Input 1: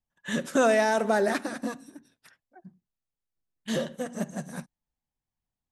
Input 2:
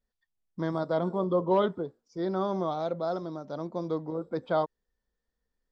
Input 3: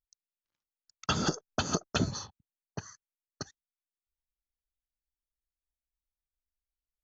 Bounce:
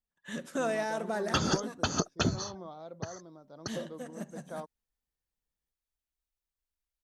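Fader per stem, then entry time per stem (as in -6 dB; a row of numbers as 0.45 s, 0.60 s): -9.5 dB, -14.5 dB, +0.5 dB; 0.00 s, 0.00 s, 0.25 s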